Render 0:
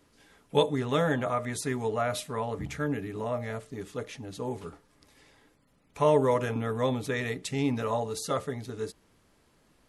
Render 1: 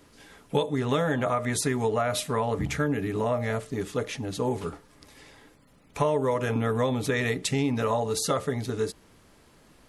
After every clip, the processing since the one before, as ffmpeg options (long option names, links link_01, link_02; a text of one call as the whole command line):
ffmpeg -i in.wav -af "acompressor=threshold=-30dB:ratio=6,volume=8dB" out.wav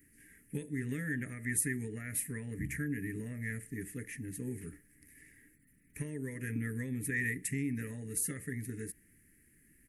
ffmpeg -i in.wav -af "firequalizer=gain_entry='entry(310,0);entry(650,-29);entry(1100,-29);entry(1800,8);entry(3500,-21);entry(9600,11)':delay=0.05:min_phase=1,volume=-8.5dB" out.wav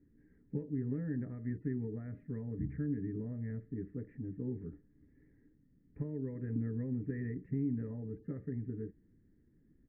ffmpeg -i in.wav -af "lowpass=frequency=1000:width=0.5412,lowpass=frequency=1000:width=1.3066,volume=1dB" out.wav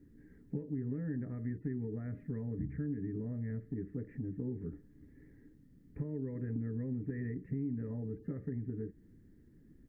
ffmpeg -i in.wav -af "acompressor=threshold=-45dB:ratio=2.5,volume=7dB" out.wav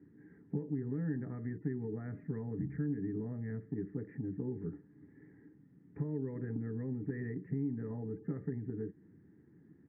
ffmpeg -i in.wav -af "highpass=frequency=110:width=0.5412,highpass=frequency=110:width=1.3066,equalizer=frequency=120:width_type=q:width=4:gain=-4,equalizer=frequency=240:width_type=q:width=4:gain=-6,equalizer=frequency=560:width_type=q:width=4:gain=-8,equalizer=frequency=830:width_type=q:width=4:gain=5,lowpass=frequency=2000:width=0.5412,lowpass=frequency=2000:width=1.3066,volume=4dB" out.wav